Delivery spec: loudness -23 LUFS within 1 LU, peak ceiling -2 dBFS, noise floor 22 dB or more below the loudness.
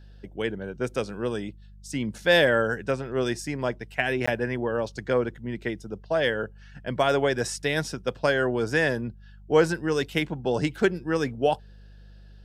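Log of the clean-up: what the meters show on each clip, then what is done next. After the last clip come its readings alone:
dropouts 1; longest dropout 15 ms; hum 50 Hz; highest harmonic 200 Hz; hum level -45 dBFS; loudness -26.5 LUFS; peak level -7.0 dBFS; loudness target -23.0 LUFS
-> interpolate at 4.26 s, 15 ms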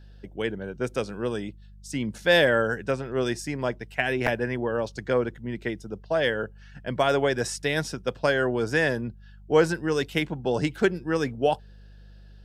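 dropouts 0; hum 50 Hz; highest harmonic 200 Hz; hum level -45 dBFS
-> de-hum 50 Hz, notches 4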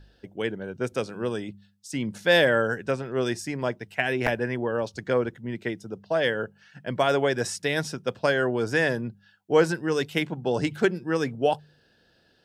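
hum not found; loudness -26.5 LUFS; peak level -7.0 dBFS; loudness target -23.0 LUFS
-> trim +3.5 dB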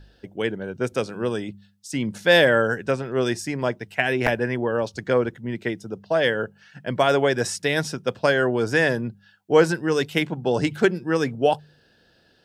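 loudness -23.0 LUFS; peak level -3.5 dBFS; noise floor -60 dBFS

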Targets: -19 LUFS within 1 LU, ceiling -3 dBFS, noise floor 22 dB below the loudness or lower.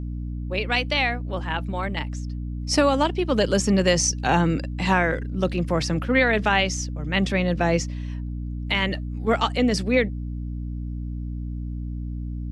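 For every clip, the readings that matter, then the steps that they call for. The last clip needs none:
hum 60 Hz; highest harmonic 300 Hz; hum level -28 dBFS; loudness -24.0 LUFS; peak level -8.0 dBFS; loudness target -19.0 LUFS
-> hum notches 60/120/180/240/300 Hz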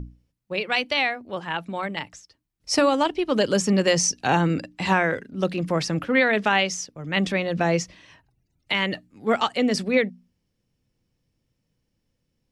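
hum not found; loudness -23.5 LUFS; peak level -8.0 dBFS; loudness target -19.0 LUFS
-> trim +4.5 dB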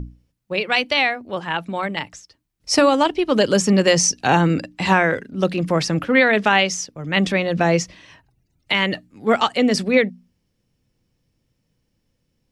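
loudness -19.0 LUFS; peak level -3.5 dBFS; noise floor -71 dBFS

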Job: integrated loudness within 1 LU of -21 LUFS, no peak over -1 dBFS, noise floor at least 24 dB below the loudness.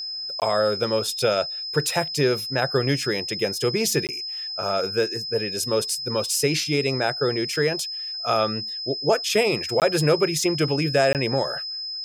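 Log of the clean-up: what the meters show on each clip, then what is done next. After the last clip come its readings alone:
dropouts 4; longest dropout 18 ms; steady tone 5.1 kHz; tone level -29 dBFS; loudness -23.0 LUFS; peak level -7.5 dBFS; loudness target -21.0 LUFS
-> interpolate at 0.40/4.07/9.80/11.13 s, 18 ms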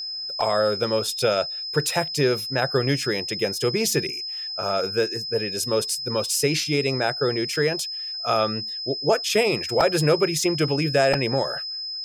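dropouts 0; steady tone 5.1 kHz; tone level -29 dBFS
-> band-stop 5.1 kHz, Q 30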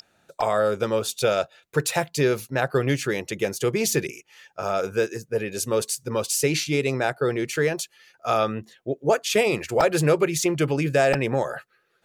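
steady tone not found; loudness -24.0 LUFS; peak level -7.0 dBFS; loudness target -21.0 LUFS
-> trim +3 dB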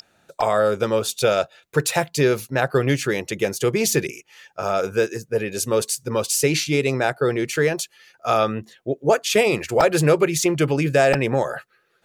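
loudness -21.0 LUFS; peak level -4.0 dBFS; noise floor -64 dBFS

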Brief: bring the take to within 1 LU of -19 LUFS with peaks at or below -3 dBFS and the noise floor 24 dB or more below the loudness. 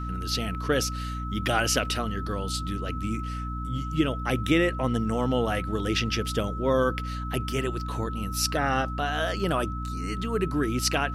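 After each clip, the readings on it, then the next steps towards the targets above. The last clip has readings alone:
hum 60 Hz; highest harmonic 300 Hz; hum level -30 dBFS; steady tone 1.3 kHz; tone level -36 dBFS; loudness -27.5 LUFS; peak level -9.0 dBFS; loudness target -19.0 LUFS
-> hum notches 60/120/180/240/300 Hz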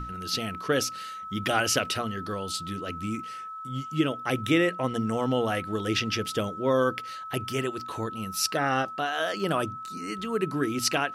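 hum not found; steady tone 1.3 kHz; tone level -36 dBFS
-> band-stop 1.3 kHz, Q 30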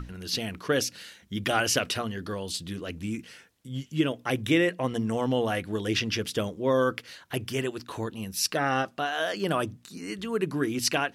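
steady tone not found; loudness -28.5 LUFS; peak level -10.0 dBFS; loudness target -19.0 LUFS
-> trim +9.5 dB; peak limiter -3 dBFS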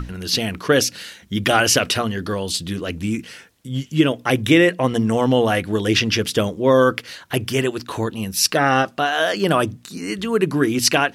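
loudness -19.5 LUFS; peak level -3.0 dBFS; noise floor -48 dBFS

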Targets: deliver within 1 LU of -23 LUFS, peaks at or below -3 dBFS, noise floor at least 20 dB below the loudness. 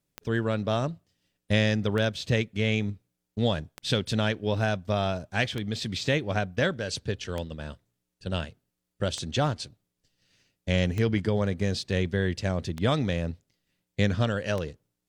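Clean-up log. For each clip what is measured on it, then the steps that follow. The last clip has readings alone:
clicks found 9; loudness -28.5 LUFS; peak level -9.5 dBFS; loudness target -23.0 LUFS
-> de-click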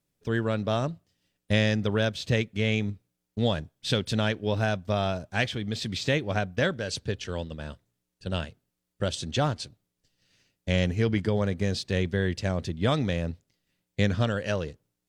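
clicks found 0; loudness -28.5 LUFS; peak level -9.5 dBFS; loudness target -23.0 LUFS
-> trim +5.5 dB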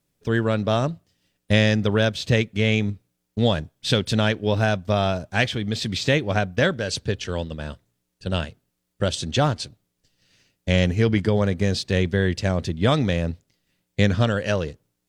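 loudness -23.0 LUFS; peak level -4.0 dBFS; noise floor -77 dBFS

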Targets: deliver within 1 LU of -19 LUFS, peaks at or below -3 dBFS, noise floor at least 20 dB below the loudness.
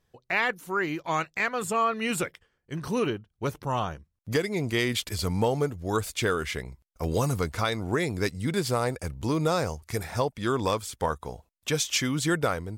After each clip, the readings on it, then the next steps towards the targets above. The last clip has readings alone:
dropouts 1; longest dropout 1.2 ms; loudness -28.5 LUFS; peak level -13.5 dBFS; loudness target -19.0 LUFS
-> interpolate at 7.04 s, 1.2 ms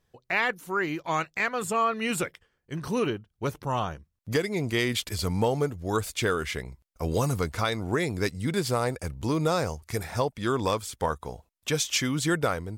dropouts 0; loudness -28.5 LUFS; peak level -13.5 dBFS; loudness target -19.0 LUFS
-> trim +9.5 dB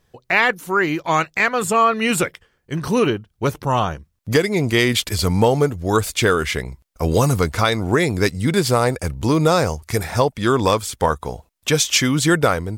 loudness -19.0 LUFS; peak level -4.0 dBFS; noise floor -67 dBFS

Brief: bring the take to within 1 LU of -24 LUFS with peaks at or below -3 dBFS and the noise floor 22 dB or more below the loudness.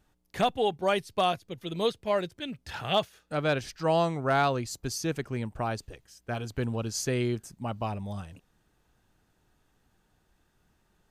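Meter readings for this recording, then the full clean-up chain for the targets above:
loudness -30.0 LUFS; peak level -15.5 dBFS; loudness target -24.0 LUFS
-> trim +6 dB

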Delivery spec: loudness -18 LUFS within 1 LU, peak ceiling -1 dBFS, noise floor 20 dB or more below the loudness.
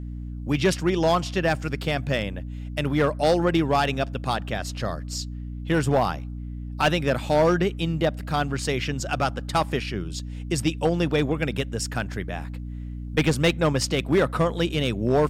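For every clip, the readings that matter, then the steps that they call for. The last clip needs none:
clipped samples 0.6%; clipping level -13.5 dBFS; hum 60 Hz; highest harmonic 300 Hz; hum level -31 dBFS; loudness -24.5 LUFS; peak level -13.5 dBFS; loudness target -18.0 LUFS
-> clip repair -13.5 dBFS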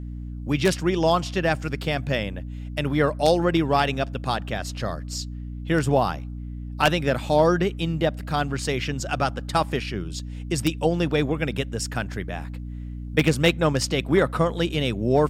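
clipped samples 0.0%; hum 60 Hz; highest harmonic 300 Hz; hum level -31 dBFS
-> de-hum 60 Hz, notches 5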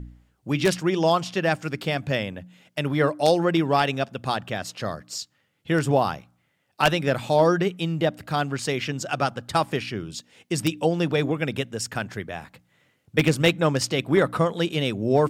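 hum not found; loudness -24.5 LUFS; peak level -4.0 dBFS; loudness target -18.0 LUFS
-> trim +6.5 dB; peak limiter -1 dBFS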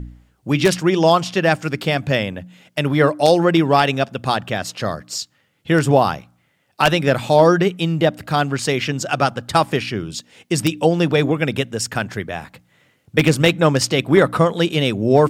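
loudness -18.0 LUFS; peak level -1.0 dBFS; noise floor -63 dBFS

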